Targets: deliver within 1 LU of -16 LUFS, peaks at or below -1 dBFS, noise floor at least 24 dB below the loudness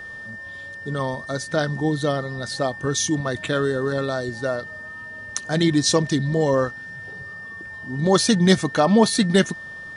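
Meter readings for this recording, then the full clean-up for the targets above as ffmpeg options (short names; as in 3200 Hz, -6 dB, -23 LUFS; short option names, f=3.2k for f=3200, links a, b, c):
steady tone 1800 Hz; tone level -34 dBFS; loudness -21.5 LUFS; peak -1.5 dBFS; loudness target -16.0 LUFS
-> -af "bandreject=f=1.8k:w=30"
-af "volume=5.5dB,alimiter=limit=-1dB:level=0:latency=1"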